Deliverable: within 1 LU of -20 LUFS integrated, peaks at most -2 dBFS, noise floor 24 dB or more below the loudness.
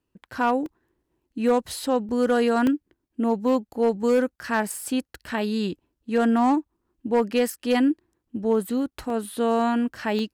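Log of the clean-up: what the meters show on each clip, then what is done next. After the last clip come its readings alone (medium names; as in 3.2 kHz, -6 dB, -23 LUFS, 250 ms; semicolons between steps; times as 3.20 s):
clipped samples 0.5%; clipping level -13.5 dBFS; dropouts 5; longest dropout 2.0 ms; loudness -24.5 LUFS; peak level -13.5 dBFS; loudness target -20.0 LUFS
-> clip repair -13.5 dBFS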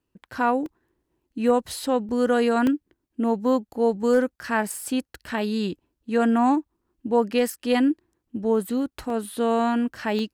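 clipped samples 0.0%; dropouts 5; longest dropout 2.0 ms
-> interpolate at 0.66/2.09/2.67/9.10/10.19 s, 2 ms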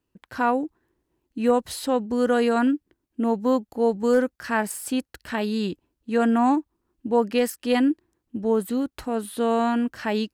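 dropouts 0; loudness -24.0 LUFS; peak level -9.0 dBFS; loudness target -20.0 LUFS
-> trim +4 dB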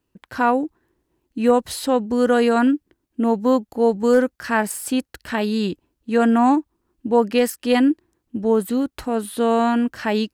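loudness -20.0 LUFS; peak level -5.0 dBFS; noise floor -76 dBFS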